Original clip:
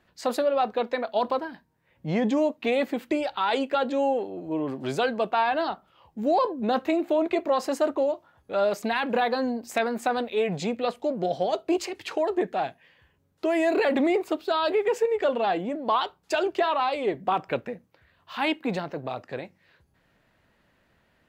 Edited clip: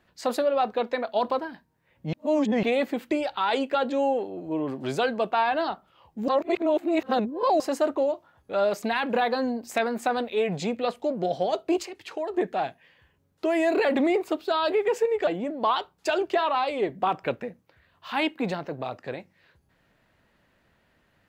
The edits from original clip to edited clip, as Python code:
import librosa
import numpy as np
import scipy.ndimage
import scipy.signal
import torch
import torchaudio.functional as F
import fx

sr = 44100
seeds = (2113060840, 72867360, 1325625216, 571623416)

y = fx.edit(x, sr, fx.reverse_span(start_s=2.13, length_s=0.5),
    fx.reverse_span(start_s=6.28, length_s=1.32),
    fx.clip_gain(start_s=11.83, length_s=0.51, db=-5.5),
    fx.cut(start_s=15.27, length_s=0.25), tone=tone)